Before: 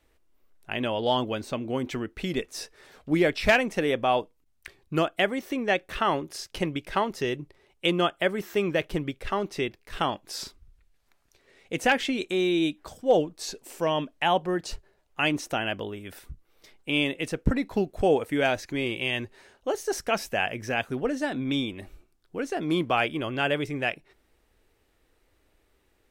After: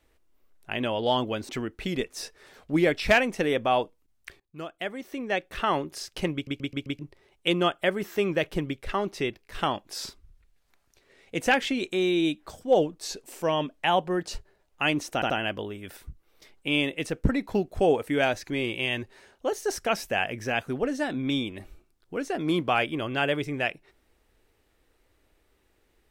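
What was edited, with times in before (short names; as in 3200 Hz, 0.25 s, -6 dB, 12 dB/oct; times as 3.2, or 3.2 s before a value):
1.49–1.87 cut
4.78–6.19 fade in, from -23 dB
6.72 stutter in place 0.13 s, 5 plays
15.52 stutter 0.08 s, 3 plays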